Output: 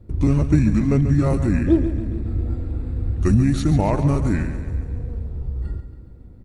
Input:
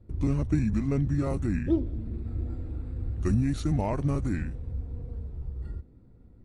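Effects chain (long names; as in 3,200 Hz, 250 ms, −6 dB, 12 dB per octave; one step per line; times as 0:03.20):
repeating echo 139 ms, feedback 58%, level −11 dB
level +8.5 dB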